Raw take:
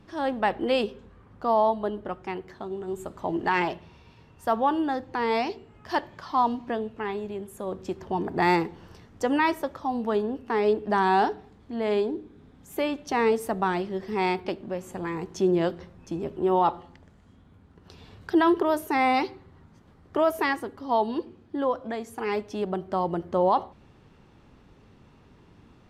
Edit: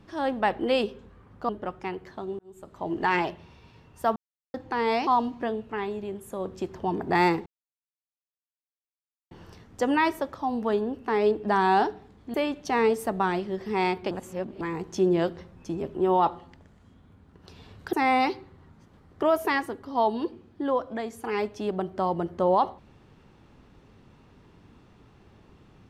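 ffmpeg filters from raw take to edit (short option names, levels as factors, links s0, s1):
-filter_complex "[0:a]asplit=11[s0][s1][s2][s3][s4][s5][s6][s7][s8][s9][s10];[s0]atrim=end=1.492[s11];[s1]atrim=start=1.918:end=2.82,asetpts=PTS-STARTPTS,afade=t=out:st=0.898:d=0.004:c=hsin[s12];[s2]atrim=start=2.82:end=4.59,asetpts=PTS-STARTPTS,afade=t=in:d=0.65,afade=t=out:st=1.766:d=0.004:c=hsin[s13];[s3]atrim=start=4.59:end=4.97,asetpts=PTS-STARTPTS,volume=0[s14];[s4]atrim=start=4.97:end=5.502,asetpts=PTS-STARTPTS,afade=t=in:d=0.004:c=hsin[s15];[s5]atrim=start=6.338:end=8.73,asetpts=PTS-STARTPTS,afade=t=out:st=2.388:d=0.004:c=hsin,apad=pad_dur=1.85[s16];[s6]atrim=start=8.73:end=11.762,asetpts=PTS-STARTPTS,afade=t=in:d=0.004:c=hsin[s17];[s7]atrim=start=12.758:end=14.532[s18];[s8]atrim=start=14.528:end=15.032,asetpts=PTS-STARTPTS,areverse[s19];[s9]atrim=start=15.028:end=18.352[s20];[s10]atrim=start=18.868[s21];[s12][s13][s14][s15]concat=n=4:v=0:a=1[s22];[s11][s22]acrossfade=d=0.004:c1=hsin:c2=hsin[s23];[s16][s17]concat=n=2:v=0:a=1[s24];[s23][s24]acrossfade=d=0.004:c1=hsin:c2=hsin[s25];[s25][s18]acrossfade=d=0.004:c1=hsin:c2=hsin[s26];[s26][s19]acrossfade=d=0.004:c1=hsin:c2=hsin[s27];[s27][s20]acrossfade=d=0.004:c1=hsin:c2=hsin[s28];[s28][s21]acrossfade=d=0.004:c1=hsin:c2=hsin"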